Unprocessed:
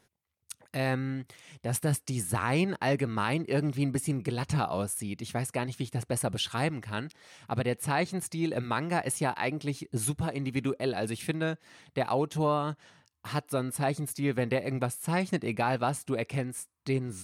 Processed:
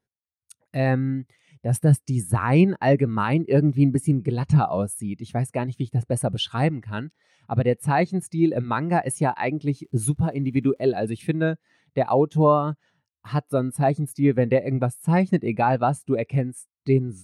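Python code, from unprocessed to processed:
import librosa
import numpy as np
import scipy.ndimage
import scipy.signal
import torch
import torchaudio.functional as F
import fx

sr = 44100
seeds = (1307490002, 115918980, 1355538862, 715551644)

y = fx.dmg_crackle(x, sr, seeds[0], per_s=280.0, level_db=-42.0, at=(9.65, 10.93), fade=0.02)
y = fx.spectral_expand(y, sr, expansion=1.5)
y = y * 10.0 ** (8.0 / 20.0)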